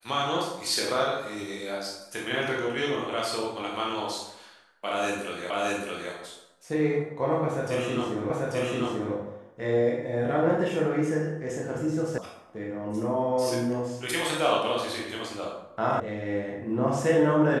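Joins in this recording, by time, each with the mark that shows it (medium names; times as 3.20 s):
5.50 s: repeat of the last 0.62 s
8.30 s: repeat of the last 0.84 s
12.18 s: sound stops dead
16.00 s: sound stops dead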